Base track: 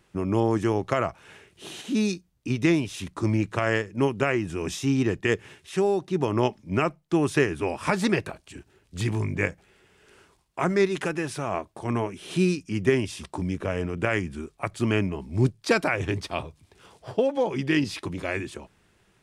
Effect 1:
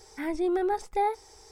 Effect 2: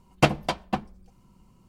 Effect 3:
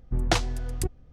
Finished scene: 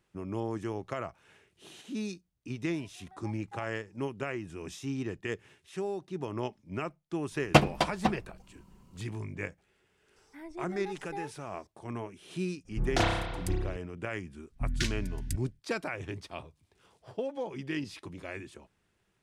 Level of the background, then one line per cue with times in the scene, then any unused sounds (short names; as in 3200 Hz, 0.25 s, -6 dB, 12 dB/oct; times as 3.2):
base track -11.5 dB
2.55 add 1 -18 dB + ladder high-pass 730 Hz, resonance 60%
7.32 add 2 -0.5 dB
10.16 add 1 -14.5 dB
12.65 add 3 -7 dB + spring tank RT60 1.1 s, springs 30 ms, chirp 25 ms, DRR -5.5 dB
14.49 add 3 -5.5 dB, fades 0.10 s + brick-wall FIR band-stop 310–1400 Hz